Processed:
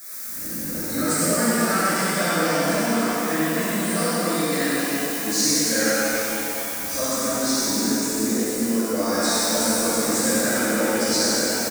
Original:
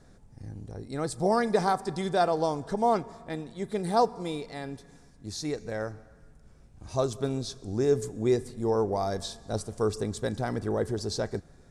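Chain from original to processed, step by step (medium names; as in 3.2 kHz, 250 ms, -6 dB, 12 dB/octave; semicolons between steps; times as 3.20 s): gate with hold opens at -46 dBFS; high-pass 180 Hz 6 dB/octave; peaking EQ 750 Hz -12.5 dB 0.76 oct; in parallel at -7.5 dB: word length cut 8-bit, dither triangular; on the sum: compression, threshold -34 dBFS, peak gain reduction 14.5 dB; tilt EQ +1.5 dB/octave; static phaser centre 600 Hz, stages 8; on a send: delay 95 ms -4 dB; on the sum: pitch-shifted reverb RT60 3.4 s, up +7 st, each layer -8 dB, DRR -11.5 dB; trim +8 dB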